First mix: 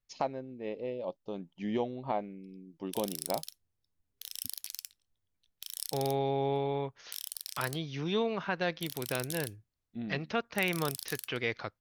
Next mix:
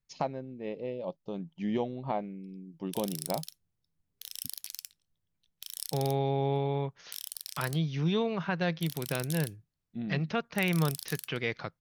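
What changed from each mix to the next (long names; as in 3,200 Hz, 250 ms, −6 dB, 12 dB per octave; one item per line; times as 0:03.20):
master: add parametric band 160 Hz +11 dB 0.5 octaves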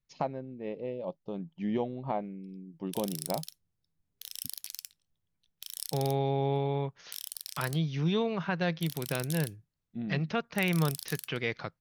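first voice: add low-pass filter 2,900 Hz 6 dB per octave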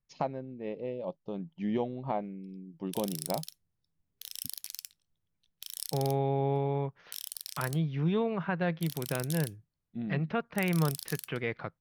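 second voice: add low-pass filter 2,200 Hz 12 dB per octave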